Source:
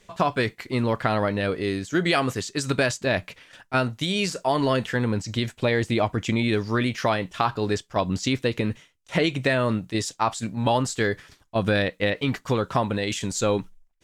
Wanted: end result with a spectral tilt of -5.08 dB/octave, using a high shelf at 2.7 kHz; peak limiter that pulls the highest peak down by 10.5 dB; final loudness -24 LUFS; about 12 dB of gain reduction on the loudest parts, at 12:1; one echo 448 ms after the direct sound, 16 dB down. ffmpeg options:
-af "highshelf=f=2700:g=-5,acompressor=threshold=0.0316:ratio=12,alimiter=level_in=1.58:limit=0.0631:level=0:latency=1,volume=0.631,aecho=1:1:448:0.158,volume=5.31"

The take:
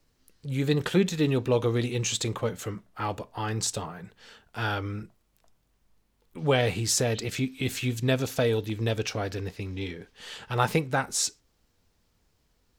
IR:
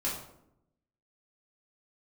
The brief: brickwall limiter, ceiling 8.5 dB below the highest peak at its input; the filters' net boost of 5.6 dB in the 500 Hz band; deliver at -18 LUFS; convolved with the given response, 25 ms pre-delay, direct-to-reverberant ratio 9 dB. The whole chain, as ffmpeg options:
-filter_complex "[0:a]equalizer=f=500:t=o:g=6.5,alimiter=limit=0.178:level=0:latency=1,asplit=2[s0][s1];[1:a]atrim=start_sample=2205,adelay=25[s2];[s1][s2]afir=irnorm=-1:irlink=0,volume=0.188[s3];[s0][s3]amix=inputs=2:normalize=0,volume=2.82"

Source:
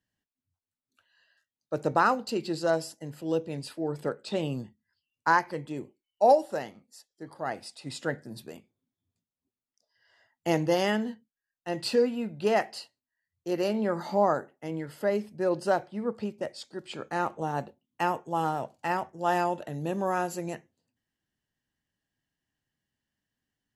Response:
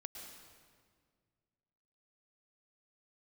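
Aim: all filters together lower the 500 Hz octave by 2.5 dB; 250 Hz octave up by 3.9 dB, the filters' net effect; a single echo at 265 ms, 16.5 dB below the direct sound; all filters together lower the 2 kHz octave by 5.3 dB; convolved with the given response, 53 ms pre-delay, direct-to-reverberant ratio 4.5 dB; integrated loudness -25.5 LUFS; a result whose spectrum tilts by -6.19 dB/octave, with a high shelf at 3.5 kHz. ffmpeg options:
-filter_complex "[0:a]equalizer=f=250:t=o:g=7,equalizer=f=500:t=o:g=-4.5,equalizer=f=2000:t=o:g=-5.5,highshelf=f=3500:g=-7,aecho=1:1:265:0.15,asplit=2[s0][s1];[1:a]atrim=start_sample=2205,adelay=53[s2];[s1][s2]afir=irnorm=-1:irlink=0,volume=0.891[s3];[s0][s3]amix=inputs=2:normalize=0,volume=1.5"

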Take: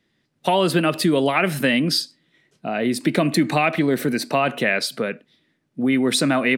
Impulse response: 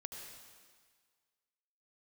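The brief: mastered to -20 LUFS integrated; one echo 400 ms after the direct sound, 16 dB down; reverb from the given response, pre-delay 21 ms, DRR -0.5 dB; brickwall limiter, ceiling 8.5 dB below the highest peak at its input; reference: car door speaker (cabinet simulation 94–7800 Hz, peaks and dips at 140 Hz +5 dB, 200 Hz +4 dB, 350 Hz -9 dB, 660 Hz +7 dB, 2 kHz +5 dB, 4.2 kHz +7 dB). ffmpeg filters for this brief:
-filter_complex "[0:a]alimiter=limit=0.224:level=0:latency=1,aecho=1:1:400:0.158,asplit=2[s0][s1];[1:a]atrim=start_sample=2205,adelay=21[s2];[s1][s2]afir=irnorm=-1:irlink=0,volume=1.5[s3];[s0][s3]amix=inputs=2:normalize=0,highpass=94,equalizer=f=140:t=q:w=4:g=5,equalizer=f=200:t=q:w=4:g=4,equalizer=f=350:t=q:w=4:g=-9,equalizer=f=660:t=q:w=4:g=7,equalizer=f=2000:t=q:w=4:g=5,equalizer=f=4200:t=q:w=4:g=7,lowpass=f=7800:w=0.5412,lowpass=f=7800:w=1.3066,volume=0.841"

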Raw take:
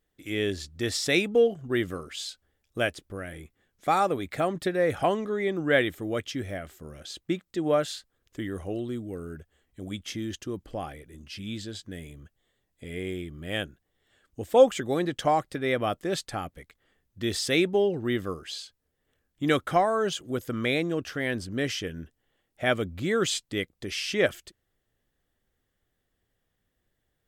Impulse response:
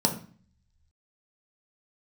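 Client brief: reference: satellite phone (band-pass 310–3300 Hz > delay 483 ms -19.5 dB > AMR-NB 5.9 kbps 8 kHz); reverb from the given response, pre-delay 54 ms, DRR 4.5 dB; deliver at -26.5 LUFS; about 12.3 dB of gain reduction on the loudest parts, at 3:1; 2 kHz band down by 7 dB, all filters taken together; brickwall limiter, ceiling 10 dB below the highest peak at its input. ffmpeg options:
-filter_complex "[0:a]equalizer=f=2000:t=o:g=-8,acompressor=threshold=0.0355:ratio=3,alimiter=level_in=1.58:limit=0.0631:level=0:latency=1,volume=0.631,asplit=2[s0][s1];[1:a]atrim=start_sample=2205,adelay=54[s2];[s1][s2]afir=irnorm=-1:irlink=0,volume=0.168[s3];[s0][s3]amix=inputs=2:normalize=0,highpass=310,lowpass=3300,aecho=1:1:483:0.106,volume=4.22" -ar 8000 -c:a libopencore_amrnb -b:a 5900

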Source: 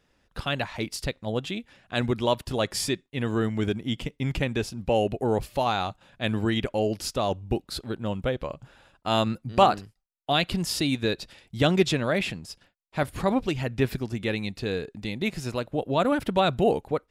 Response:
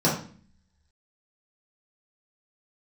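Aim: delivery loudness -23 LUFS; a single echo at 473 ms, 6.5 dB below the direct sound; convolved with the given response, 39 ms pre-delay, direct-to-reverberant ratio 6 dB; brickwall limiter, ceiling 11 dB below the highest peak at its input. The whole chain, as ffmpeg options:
-filter_complex "[0:a]alimiter=limit=0.158:level=0:latency=1,aecho=1:1:473:0.473,asplit=2[s0][s1];[1:a]atrim=start_sample=2205,adelay=39[s2];[s1][s2]afir=irnorm=-1:irlink=0,volume=0.0891[s3];[s0][s3]amix=inputs=2:normalize=0,volume=1.26"

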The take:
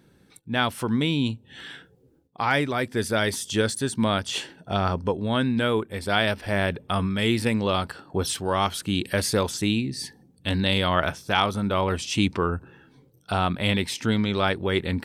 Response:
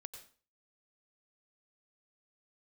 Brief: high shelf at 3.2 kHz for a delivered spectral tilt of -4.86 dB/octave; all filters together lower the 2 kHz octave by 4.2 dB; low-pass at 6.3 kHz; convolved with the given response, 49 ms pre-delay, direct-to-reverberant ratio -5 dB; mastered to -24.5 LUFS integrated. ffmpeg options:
-filter_complex "[0:a]lowpass=6300,equalizer=f=2000:t=o:g=-4,highshelf=f=3200:g=-5,asplit=2[s0][s1];[1:a]atrim=start_sample=2205,adelay=49[s2];[s1][s2]afir=irnorm=-1:irlink=0,volume=3.16[s3];[s0][s3]amix=inputs=2:normalize=0,volume=0.596"

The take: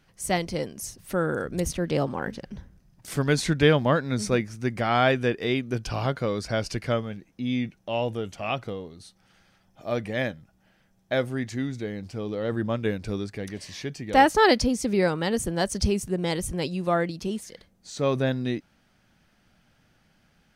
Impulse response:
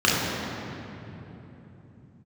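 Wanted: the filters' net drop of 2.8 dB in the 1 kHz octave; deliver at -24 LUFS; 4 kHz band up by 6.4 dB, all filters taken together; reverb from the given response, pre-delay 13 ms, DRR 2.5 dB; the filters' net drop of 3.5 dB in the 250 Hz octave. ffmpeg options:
-filter_complex "[0:a]equalizer=f=250:t=o:g=-4.5,equalizer=f=1000:t=o:g=-4,equalizer=f=4000:t=o:g=8.5,asplit=2[s0][s1];[1:a]atrim=start_sample=2205,adelay=13[s2];[s1][s2]afir=irnorm=-1:irlink=0,volume=0.0708[s3];[s0][s3]amix=inputs=2:normalize=0,volume=1.06"

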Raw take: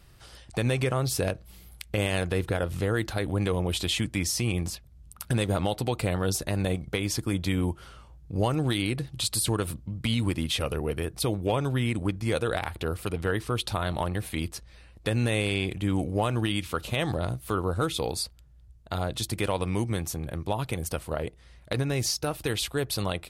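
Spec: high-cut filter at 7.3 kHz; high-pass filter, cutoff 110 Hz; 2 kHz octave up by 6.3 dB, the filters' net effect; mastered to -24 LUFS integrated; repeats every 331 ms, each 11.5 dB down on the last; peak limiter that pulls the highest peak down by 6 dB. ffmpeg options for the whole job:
-af "highpass=110,lowpass=7300,equalizer=f=2000:t=o:g=8,alimiter=limit=0.2:level=0:latency=1,aecho=1:1:331|662|993:0.266|0.0718|0.0194,volume=1.78"

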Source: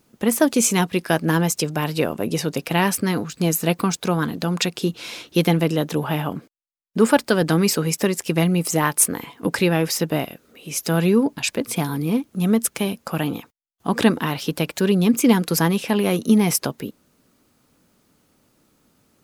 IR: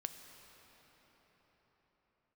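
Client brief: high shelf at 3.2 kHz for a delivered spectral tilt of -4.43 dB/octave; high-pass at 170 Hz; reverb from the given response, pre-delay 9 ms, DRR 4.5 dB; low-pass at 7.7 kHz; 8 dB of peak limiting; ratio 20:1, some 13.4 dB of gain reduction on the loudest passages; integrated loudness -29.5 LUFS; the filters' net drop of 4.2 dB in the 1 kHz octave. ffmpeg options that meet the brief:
-filter_complex "[0:a]highpass=170,lowpass=7700,equalizer=f=1000:t=o:g=-5,highshelf=f=3200:g=-4,acompressor=threshold=0.0562:ratio=20,alimiter=limit=0.1:level=0:latency=1,asplit=2[s0][s1];[1:a]atrim=start_sample=2205,adelay=9[s2];[s1][s2]afir=irnorm=-1:irlink=0,volume=0.75[s3];[s0][s3]amix=inputs=2:normalize=0,volume=1.33"

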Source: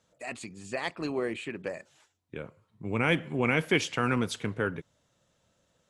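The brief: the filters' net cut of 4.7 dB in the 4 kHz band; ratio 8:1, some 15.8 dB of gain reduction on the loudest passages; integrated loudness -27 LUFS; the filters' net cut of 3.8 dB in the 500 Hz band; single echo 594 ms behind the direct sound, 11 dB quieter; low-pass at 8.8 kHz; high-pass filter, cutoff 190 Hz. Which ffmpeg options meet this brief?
-af "highpass=190,lowpass=8800,equalizer=f=500:t=o:g=-4.5,equalizer=f=4000:t=o:g=-6.5,acompressor=threshold=0.0112:ratio=8,aecho=1:1:594:0.282,volume=7.5"

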